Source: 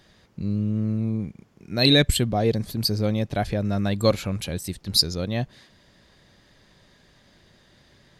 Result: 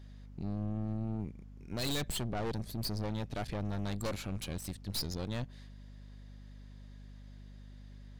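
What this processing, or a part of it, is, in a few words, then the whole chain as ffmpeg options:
valve amplifier with mains hum: -af "aeval=exprs='(tanh(25.1*val(0)+0.75)-tanh(0.75))/25.1':channel_layout=same,aeval=exprs='val(0)+0.00631*(sin(2*PI*50*n/s)+sin(2*PI*2*50*n/s)/2+sin(2*PI*3*50*n/s)/3+sin(2*PI*4*50*n/s)/4+sin(2*PI*5*50*n/s)/5)':channel_layout=same,volume=-5dB"

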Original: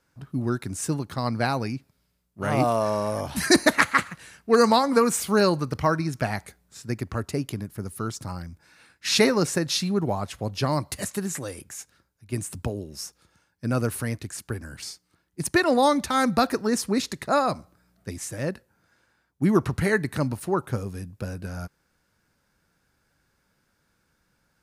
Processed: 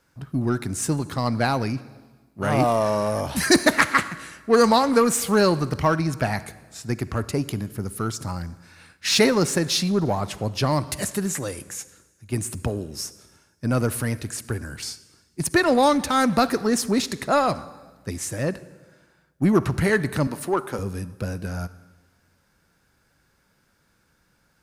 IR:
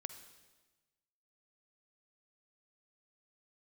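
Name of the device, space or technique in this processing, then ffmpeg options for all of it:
saturated reverb return: -filter_complex "[0:a]asettb=1/sr,asplit=3[link_01][link_02][link_03];[link_01]atrim=end=20.274[link_04];[link_02]atrim=start=20.27:end=20.79,asetpts=PTS-STARTPTS,afade=type=in:duration=0.004:curve=qsin,afade=type=out:start_time=0.516:duration=0.004:curve=qsin,highpass=280[link_05];[link_03]atrim=start=20.786[link_06];[link_04][link_05]acrossfade=duration=0.004:curve1=hsin:curve2=qsin[link_07];[link_07][link_06]acrossfade=duration=0.004:curve1=qsin:curve2=hsin,asplit=2[link_08][link_09];[1:a]atrim=start_sample=2205[link_10];[link_09][link_10]afir=irnorm=-1:irlink=0,asoftclip=type=tanh:threshold=-29dB,volume=0.5dB[link_11];[link_08][link_11]amix=inputs=2:normalize=0"

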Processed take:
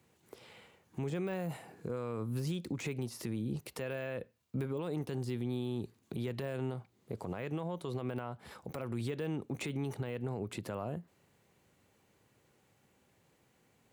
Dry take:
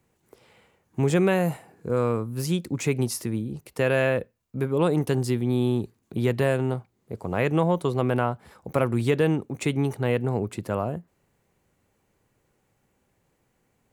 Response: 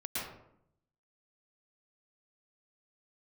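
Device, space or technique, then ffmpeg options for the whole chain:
broadcast voice chain: -af "highpass=76,deesser=0.9,acompressor=threshold=-30dB:ratio=4,equalizer=frequency=3600:width_type=o:width=1.2:gain=4.5,alimiter=level_in=4dB:limit=-24dB:level=0:latency=1:release=91,volume=-4dB"

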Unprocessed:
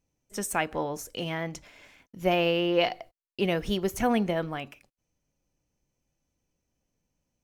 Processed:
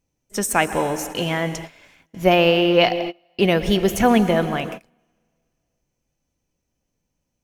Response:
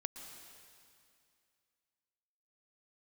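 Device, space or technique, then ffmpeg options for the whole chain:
keyed gated reverb: -filter_complex "[0:a]asplit=3[link_01][link_02][link_03];[1:a]atrim=start_sample=2205[link_04];[link_02][link_04]afir=irnorm=-1:irlink=0[link_05];[link_03]apad=whole_len=327729[link_06];[link_05][link_06]sidechaingate=range=-27dB:threshold=-47dB:ratio=16:detection=peak,volume=4dB[link_07];[link_01][link_07]amix=inputs=2:normalize=0,volume=2.5dB"

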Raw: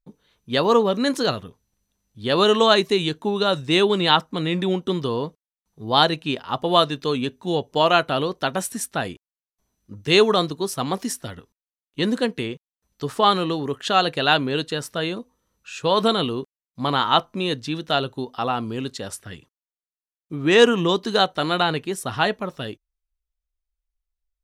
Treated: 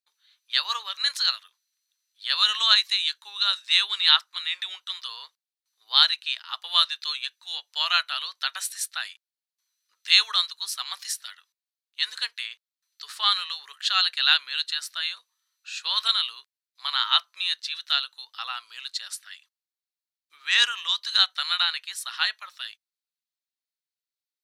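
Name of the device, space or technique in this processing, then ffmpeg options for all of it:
headphones lying on a table: -af "highpass=frequency=1400:width=0.5412,highpass=frequency=1400:width=1.3066,equalizer=frequency=4200:width_type=o:width=0.49:gain=9,volume=-1.5dB"

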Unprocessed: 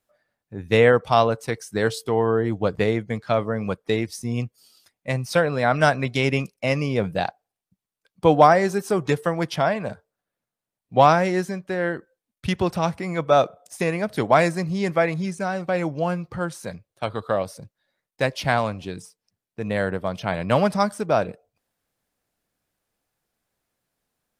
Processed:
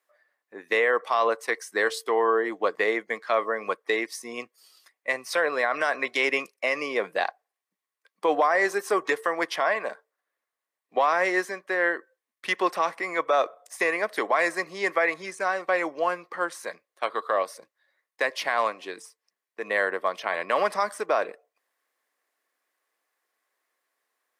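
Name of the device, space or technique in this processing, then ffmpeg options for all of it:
laptop speaker: -af "highpass=frequency=350:width=0.5412,highpass=frequency=350:width=1.3066,equalizer=frequency=1100:width_type=o:width=0.2:gain=11,equalizer=frequency=1900:width_type=o:width=0.48:gain=10,alimiter=limit=-11dB:level=0:latency=1:release=59,volume=-1.5dB"

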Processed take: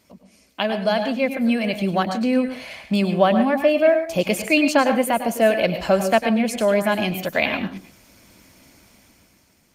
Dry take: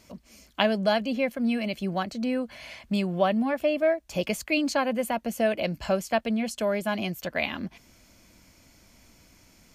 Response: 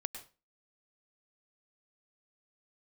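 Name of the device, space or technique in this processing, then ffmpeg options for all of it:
far-field microphone of a smart speaker: -filter_complex "[0:a]asplit=3[link_01][link_02][link_03];[link_01]afade=type=out:start_time=4.84:duration=0.02[link_04];[link_02]equalizer=frequency=110:width=1.9:gain=-5,afade=type=in:start_time=4.84:duration=0.02,afade=type=out:start_time=6.03:duration=0.02[link_05];[link_03]afade=type=in:start_time=6.03:duration=0.02[link_06];[link_04][link_05][link_06]amix=inputs=3:normalize=0[link_07];[1:a]atrim=start_sample=2205[link_08];[link_07][link_08]afir=irnorm=-1:irlink=0,highpass=frequency=110:poles=1,dynaudnorm=framelen=170:gausssize=11:maxgain=10dB" -ar 48000 -c:a libopus -b:a 32k

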